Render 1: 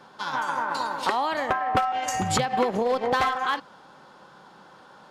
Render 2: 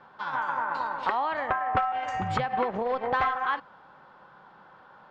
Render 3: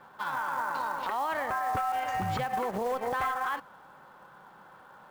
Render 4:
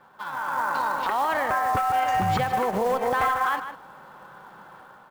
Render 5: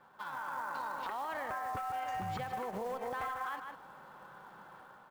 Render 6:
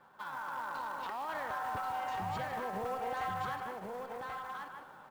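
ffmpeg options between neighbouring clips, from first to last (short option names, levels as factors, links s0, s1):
-af "lowpass=1900,equalizer=f=290:w=0.55:g=-8.5,volume=1.12"
-af "alimiter=limit=0.0708:level=0:latency=1:release=34,acrusher=bits=5:mode=log:mix=0:aa=0.000001"
-filter_complex "[0:a]dynaudnorm=f=320:g=3:m=2.51,asplit=2[s0][s1];[s1]adelay=151.6,volume=0.316,highshelf=f=4000:g=-3.41[s2];[s0][s2]amix=inputs=2:normalize=0,volume=0.841"
-af "acompressor=threshold=0.0251:ratio=2.5,volume=0.447"
-filter_complex "[0:a]volume=47.3,asoftclip=hard,volume=0.0211,asplit=2[s0][s1];[s1]aecho=0:1:1085:0.668[s2];[s0][s2]amix=inputs=2:normalize=0"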